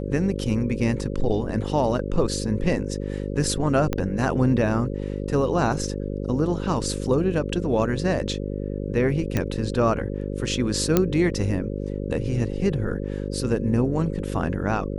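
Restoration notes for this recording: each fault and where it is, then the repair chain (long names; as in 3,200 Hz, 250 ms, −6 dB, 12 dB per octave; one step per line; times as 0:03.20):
mains buzz 50 Hz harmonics 11 −29 dBFS
0:03.93: click −11 dBFS
0:09.37: click −10 dBFS
0:10.97: click −4 dBFS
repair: click removal
hum removal 50 Hz, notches 11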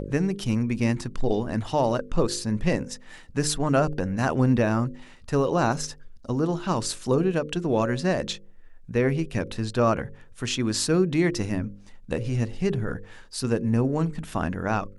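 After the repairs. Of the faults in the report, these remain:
0:03.93: click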